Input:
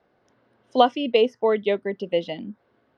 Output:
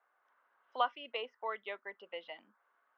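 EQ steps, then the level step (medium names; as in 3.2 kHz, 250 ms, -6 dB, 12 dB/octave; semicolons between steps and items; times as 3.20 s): dynamic bell 990 Hz, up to -5 dB, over -29 dBFS, Q 0.7; ladder band-pass 1.4 kHz, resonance 45%; distance through air 110 m; +5.5 dB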